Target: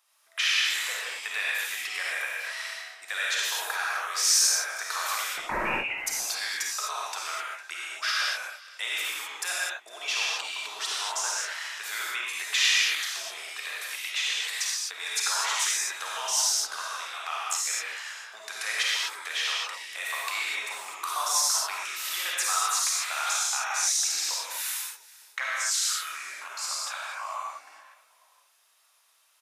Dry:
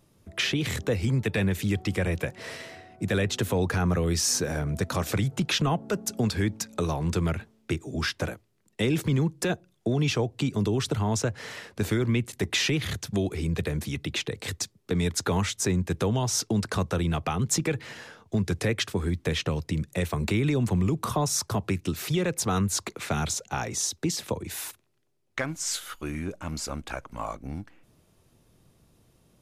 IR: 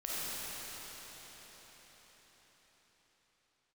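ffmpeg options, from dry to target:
-filter_complex "[0:a]asettb=1/sr,asplit=3[a][b][c];[a]atrim=end=16.554[d];[b]atrim=start=16.55:end=17.71,asetpts=PTS-STARTPTS,afade=t=in:d=0.004:c=qsin,afade=t=out:st=1.156:d=0.004:c=qsin,tremolo=f=81:d=0.919[e];[c]atrim=start=17.706[f];[d][e]acrossfade=d=0.004:c1=hsin:c2=qsin[g];[g][f]acrossfade=d=0.004:c1=qsin:c2=hsin,highpass=f=980:w=0.5412,highpass=f=980:w=1.3066,asettb=1/sr,asplit=3[h][i][j];[h]atrim=end=5.334[k];[i]atrim=start=5.33:end=5.98,asetpts=PTS-STARTPTS,afade=t=in:d=0.004:c=qsin,afade=t=out:st=0.646:d=0.004:c=qsin,lowpass=f=3k:t=q:w=0.5098,lowpass=f=3k:t=q:w=0.6013,lowpass=f=3k:t=q:w=0.9,lowpass=f=3k:t=q:w=2.563,afreqshift=-3500[l];[j]atrim=start=5.976[m];[k][l]acrossfade=d=0.004:c1=hsin:c2=qsin[n];[n][m]acrossfade=d=0.004:c1=qsin:c2=hsin,asplit=3[o][p][q];[p]adelay=455,afreqshift=-42,volume=-21dB[r];[q]adelay=910,afreqshift=-84,volume=-30.6dB[s];[o][r][s]amix=inputs=3:normalize=0[t];[1:a]atrim=start_sample=2205,afade=t=out:st=0.31:d=0.01,atrim=end_sample=14112[u];[t][u]afir=irnorm=-1:irlink=0,volume=3.5dB"

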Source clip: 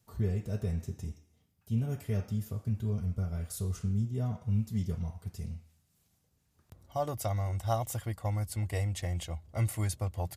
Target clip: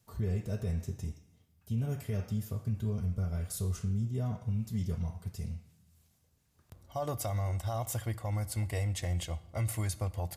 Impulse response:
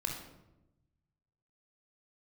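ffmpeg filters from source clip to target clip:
-filter_complex "[0:a]alimiter=level_in=2dB:limit=-24dB:level=0:latency=1:release=44,volume=-2dB,asplit=2[a][b];[1:a]atrim=start_sample=2205,lowshelf=f=390:g=-11[c];[b][c]afir=irnorm=-1:irlink=0,volume=-12dB[d];[a][d]amix=inputs=2:normalize=0"

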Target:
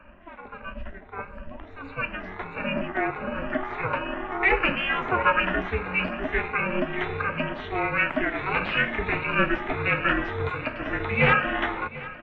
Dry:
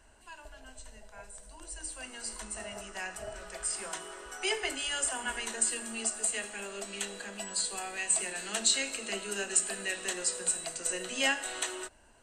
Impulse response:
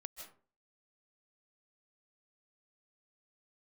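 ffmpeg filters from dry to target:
-filter_complex "[0:a]afftfilt=real='re*pow(10,18/40*sin(2*PI*(1.3*log(max(b,1)*sr/1024/100)/log(2)-(1.5)*(pts-256)/sr)))':imag='im*pow(10,18/40*sin(2*PI*(1.3*log(max(b,1)*sr/1024/100)/log(2)-(1.5)*(pts-256)/sr)))':win_size=1024:overlap=0.75,asplit=2[a][b];[b]aeval=exprs='sgn(val(0))*max(abs(val(0))-0.00335,0)':c=same,volume=-4dB[c];[a][c]amix=inputs=2:normalize=0,aeval=exprs='val(0)*sin(2*PI*180*n/s)':c=same,aeval=exprs='0.708*sin(PI/2*5.62*val(0)/0.708)':c=same,asplit=2[d][e];[e]aecho=0:1:742|1484|2226|2968|3710:0.126|0.073|0.0424|0.0246|0.0142[f];[d][f]amix=inputs=2:normalize=0,highpass=f=190:t=q:w=0.5412,highpass=f=190:t=q:w=1.307,lowpass=f=2.7k:t=q:w=0.5176,lowpass=f=2.7k:t=q:w=0.7071,lowpass=f=2.7k:t=q:w=1.932,afreqshift=-220,volume=-8dB"

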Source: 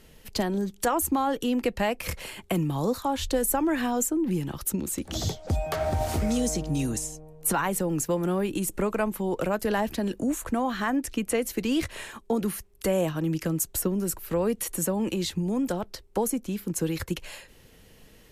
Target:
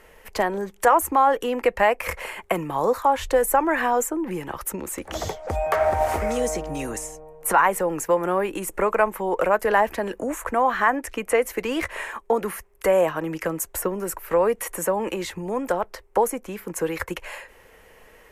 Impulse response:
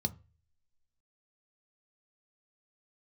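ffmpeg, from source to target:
-af "equalizer=f=125:t=o:w=1:g=-9,equalizer=f=250:t=o:w=1:g=-5,equalizer=f=500:t=o:w=1:g=7,equalizer=f=1k:t=o:w=1:g=9,equalizer=f=2k:t=o:w=1:g=9,equalizer=f=4k:t=o:w=1:g=-7"

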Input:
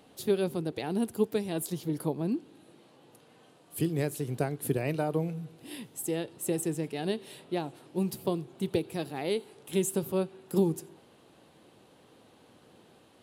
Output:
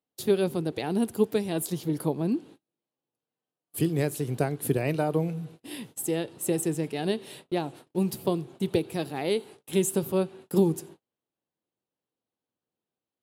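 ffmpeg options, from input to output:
-af "agate=range=-37dB:threshold=-49dB:ratio=16:detection=peak,volume=3.5dB"

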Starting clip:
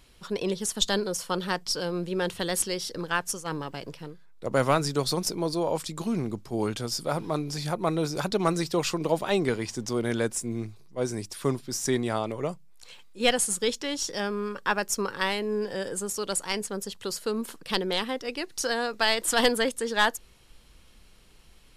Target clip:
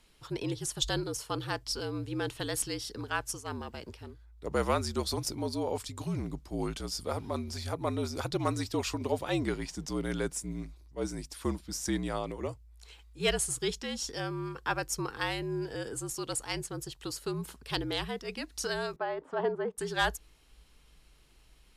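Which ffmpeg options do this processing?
-filter_complex "[0:a]afreqshift=-57,asettb=1/sr,asplit=3[a][b][c];[a]atrim=end=18.964[d];[b]atrim=start=18.96:end=19.78,asetpts=PTS-STARTPTS,afade=t=in:d=0.004:c=qsin,afade=t=out:st=0.816:d=0.004:c=qsin,asuperpass=centerf=520:order=4:qfactor=0.59[e];[c]atrim=start=19.776[f];[d][e]acrossfade=d=0.004:c1=hsin:c2=qsin[g];[g][f]acrossfade=d=0.004:c1=qsin:c2=hsin,volume=-5.5dB"

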